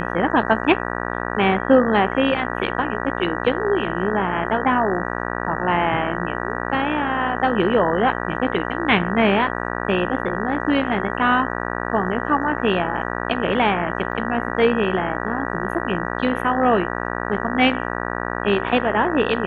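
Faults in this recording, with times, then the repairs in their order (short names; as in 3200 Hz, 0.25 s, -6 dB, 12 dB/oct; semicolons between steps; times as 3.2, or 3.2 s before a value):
buzz 60 Hz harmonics 32 -26 dBFS
14.12 gap 2.7 ms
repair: de-hum 60 Hz, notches 32; interpolate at 14.12, 2.7 ms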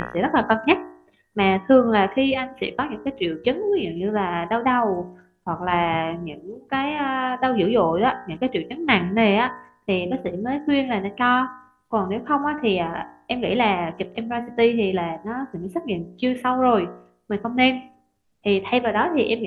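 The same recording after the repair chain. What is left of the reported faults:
none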